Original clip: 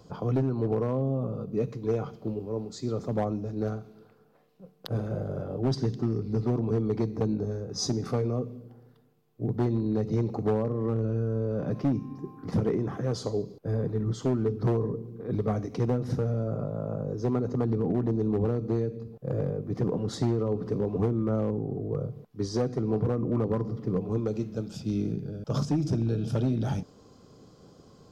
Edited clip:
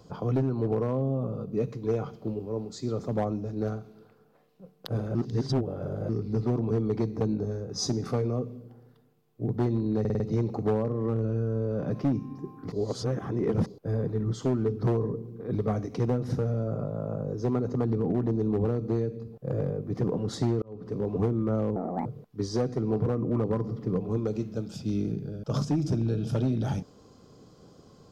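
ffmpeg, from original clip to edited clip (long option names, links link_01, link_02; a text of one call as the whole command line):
ffmpeg -i in.wav -filter_complex "[0:a]asplit=12[link_01][link_02][link_03][link_04][link_05][link_06][link_07][link_08][link_09][link_10][link_11][link_12];[link_01]atrim=end=5.152[link_13];[link_02]atrim=start=5.148:end=6.092,asetpts=PTS-STARTPTS,areverse[link_14];[link_03]atrim=start=6.088:end=10.052[link_15];[link_04]atrim=start=9.998:end=10.052[link_16];[link_05]atrim=start=9.998:end=10.052[link_17];[link_06]atrim=start=9.998:end=10.052[link_18];[link_07]atrim=start=9.998:end=12.522[link_19];[link_08]atrim=start=12.518:end=13.462,asetpts=PTS-STARTPTS,areverse[link_20];[link_09]atrim=start=13.458:end=20.42,asetpts=PTS-STARTPTS,afade=type=out:start_time=6.958:duration=0.004:curve=hsin[link_21];[link_10]atrim=start=20.42:end=21.564,asetpts=PTS-STARTPTS,afade=type=in:duration=0.48[link_22];[link_11]atrim=start=21.56:end=22.06,asetpts=PTS-STARTPTS,asetrate=74529,aresample=44100,atrim=end_sample=13047,asetpts=PTS-STARTPTS[link_23];[link_12]atrim=start=22.056[link_24];[link_13][link_14]acrossfade=duration=0.004:curve1=hsin:curve2=hsin[link_25];[link_25][link_15]acrossfade=duration=0.004:curve1=hsin:curve2=hsin[link_26];[link_26][link_16]acrossfade=duration=0.004:curve1=hsin:curve2=hsin[link_27];[link_27][link_17]acrossfade=duration=0.004:curve1=hsin:curve2=hsin[link_28];[link_28][link_18]acrossfade=duration=0.004:curve1=hsin:curve2=hsin[link_29];[link_29][link_19]acrossfade=duration=0.004:curve1=hsin:curve2=hsin[link_30];[link_30][link_20]acrossfade=duration=0.004:curve1=hsin:curve2=hsin[link_31];[link_21][link_22]concat=n=2:v=0:a=1[link_32];[link_31][link_32]acrossfade=duration=0.004:curve1=hsin:curve2=hsin[link_33];[link_33][link_23]acrossfade=duration=0.004:curve1=hsin:curve2=hsin[link_34];[link_34][link_24]acrossfade=duration=0.004:curve1=hsin:curve2=hsin" out.wav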